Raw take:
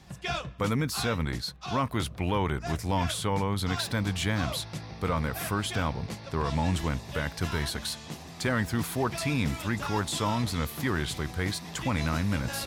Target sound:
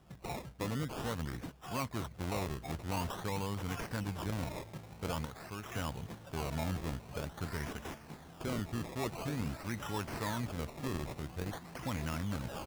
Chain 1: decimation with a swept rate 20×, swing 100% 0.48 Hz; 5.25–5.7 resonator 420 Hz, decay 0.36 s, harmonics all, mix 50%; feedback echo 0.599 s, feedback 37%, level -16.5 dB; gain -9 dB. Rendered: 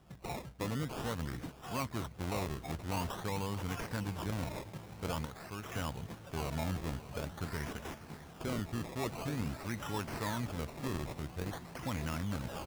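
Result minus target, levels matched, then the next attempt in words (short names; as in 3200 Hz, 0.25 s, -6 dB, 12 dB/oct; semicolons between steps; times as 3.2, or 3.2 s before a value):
echo-to-direct +11.5 dB
decimation with a swept rate 20×, swing 100% 0.48 Hz; 5.25–5.7 resonator 420 Hz, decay 0.36 s, harmonics all, mix 50%; feedback echo 0.599 s, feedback 37%, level -28 dB; gain -9 dB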